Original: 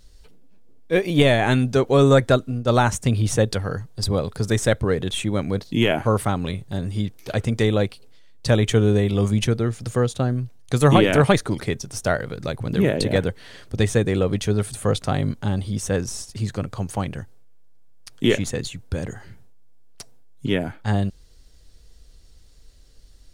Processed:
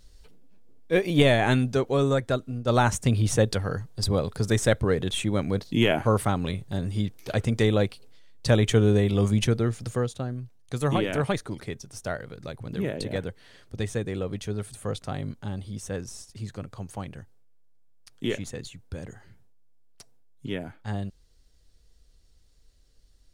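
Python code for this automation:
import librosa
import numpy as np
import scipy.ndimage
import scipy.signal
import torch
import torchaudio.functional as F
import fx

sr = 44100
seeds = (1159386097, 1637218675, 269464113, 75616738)

y = fx.gain(x, sr, db=fx.line((1.51, -3.0), (2.22, -10.0), (2.88, -2.5), (9.76, -2.5), (10.25, -10.0)))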